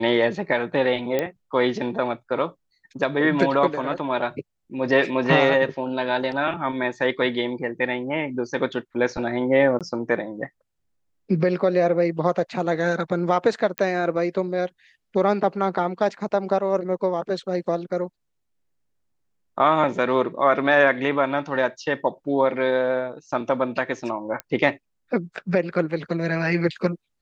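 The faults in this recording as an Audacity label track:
1.190000	1.190000	pop -10 dBFS
9.790000	9.810000	dropout 17 ms
13.780000	13.780000	pop -10 dBFS
24.400000	24.400000	pop -14 dBFS

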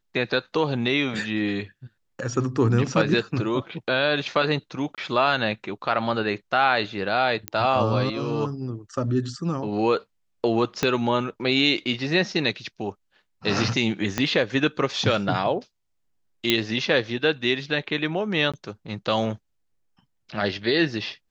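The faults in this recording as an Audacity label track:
4.950000	4.980000	dropout 27 ms
7.480000	7.480000	pop -10 dBFS
10.830000	10.830000	pop -7 dBFS
14.180000	14.180000	pop -8 dBFS
16.500000	16.500000	pop -4 dBFS
18.520000	18.540000	dropout 16 ms

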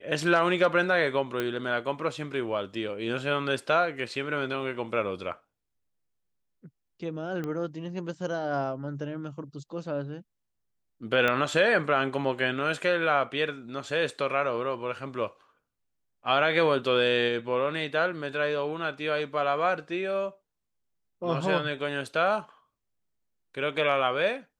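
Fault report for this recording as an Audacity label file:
1.400000	1.400000	pop -15 dBFS
7.440000	7.440000	pop -22 dBFS
11.280000	11.280000	pop -13 dBFS

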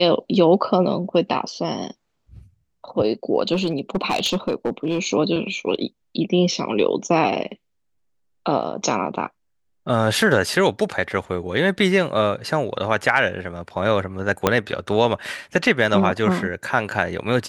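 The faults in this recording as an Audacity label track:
3.530000	4.990000	clipped -15.5 dBFS
14.470000	14.470000	pop -1 dBFS

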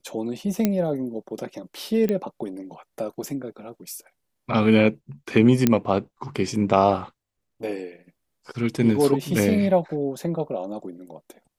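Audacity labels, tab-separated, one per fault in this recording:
0.650000	0.650000	pop -7 dBFS
2.090000	2.090000	pop -13 dBFS
5.670000	5.670000	pop -4 dBFS

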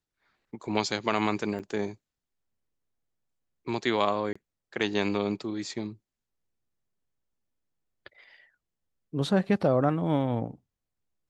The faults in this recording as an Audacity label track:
1.590000	1.600000	dropout 7.6 ms
4.330000	4.360000	dropout 25 ms

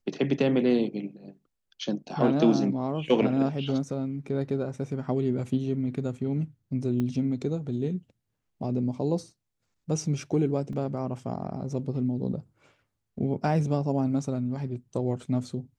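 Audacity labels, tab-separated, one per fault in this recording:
7.000000	7.000000	pop -19 dBFS
10.730000	10.730000	dropout 2.8 ms

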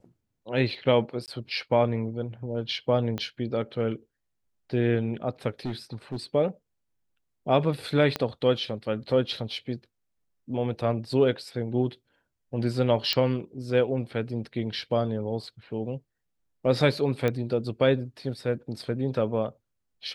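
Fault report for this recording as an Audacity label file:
1.260000	1.280000	dropout 18 ms
3.180000	3.180000	pop -18 dBFS
5.650000	6.170000	clipped -26.5 dBFS
8.160000	8.160000	pop -13 dBFS
13.130000	13.130000	pop -10 dBFS
17.280000	17.280000	pop -14 dBFS

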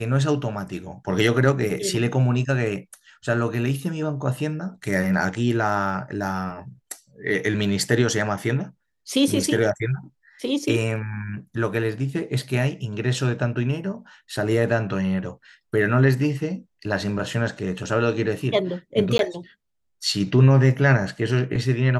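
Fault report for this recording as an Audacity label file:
19.180000	19.190000	dropout 12 ms

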